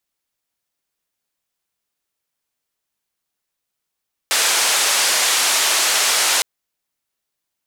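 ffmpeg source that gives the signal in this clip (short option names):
-f lavfi -i "anoisesrc=c=white:d=2.11:r=44100:seed=1,highpass=f=580,lowpass=f=8600,volume=-7.9dB"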